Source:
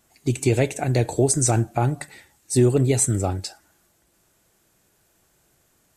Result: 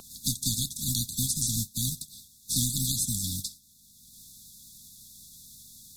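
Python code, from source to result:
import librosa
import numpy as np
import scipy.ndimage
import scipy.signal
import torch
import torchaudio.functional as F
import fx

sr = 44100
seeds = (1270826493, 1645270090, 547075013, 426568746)

y = fx.spec_flatten(x, sr, power=0.35)
y = fx.brickwall_bandstop(y, sr, low_hz=270.0, high_hz=3400.0)
y = fx.vibrato(y, sr, rate_hz=11.0, depth_cents=60.0)
y = fx.band_squash(y, sr, depth_pct=70)
y = y * 10.0 ** (-6.0 / 20.0)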